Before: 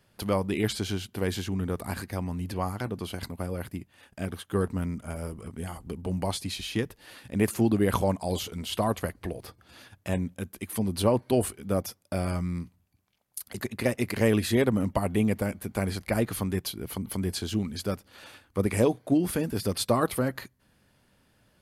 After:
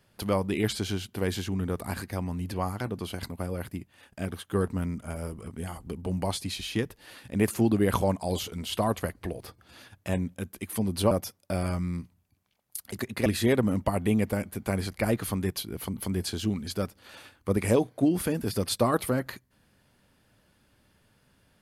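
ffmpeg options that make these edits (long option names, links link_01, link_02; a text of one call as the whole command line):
ffmpeg -i in.wav -filter_complex "[0:a]asplit=3[link_01][link_02][link_03];[link_01]atrim=end=11.112[link_04];[link_02]atrim=start=11.728:end=13.882[link_05];[link_03]atrim=start=14.348[link_06];[link_04][link_05]acrossfade=duration=0.004:curve1=hsin:curve2=hsin[link_07];[link_07][link_06]acrossfade=duration=0.004:curve1=hsin:curve2=hsin" out.wav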